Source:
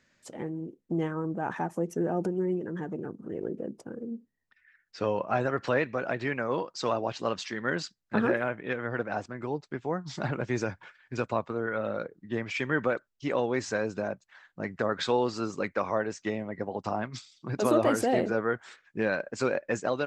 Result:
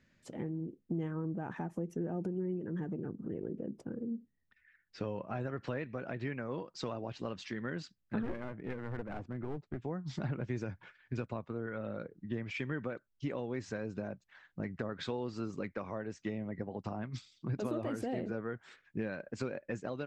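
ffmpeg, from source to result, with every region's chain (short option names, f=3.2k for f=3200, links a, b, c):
-filter_complex "[0:a]asettb=1/sr,asplit=3[a][b][c];[a]atrim=end=8.234[d];[b]atrim=start=8.23:end=9.82,asetpts=PTS-STARTPTS,afade=t=in:d=0.004:c=qsin,afade=t=out:st=1.586:d=0.004:c=qsin,lowpass=f=1.2k:p=1,aeval=exprs='clip(val(0),-1,0.0188)':c=same[e];[c]atrim=start=9.816[f];[d][e]acrossfade=d=0.004:c1=hsin:c2=qsin[g];[g][f]acrossfade=d=0.004:c1=qsin:c2=hsin,bass=f=250:g=2,treble=f=4k:g=-13,acompressor=threshold=-36dB:ratio=2.5,equalizer=f=990:w=0.4:g=-9.5,volume=3.5dB"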